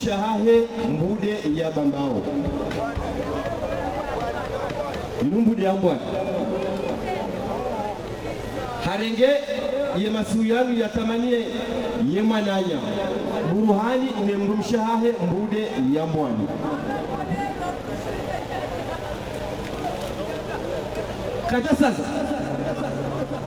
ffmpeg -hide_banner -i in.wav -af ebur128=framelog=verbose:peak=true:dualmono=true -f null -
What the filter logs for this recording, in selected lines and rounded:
Integrated loudness:
  I:         -21.1 LUFS
  Threshold: -31.1 LUFS
Loudness range:
  LRA:         5.9 LU
  Threshold: -41.3 LUFS
  LRA low:   -25.3 LUFS
  LRA high:  -19.4 LUFS
True peak:
  Peak:       -5.5 dBFS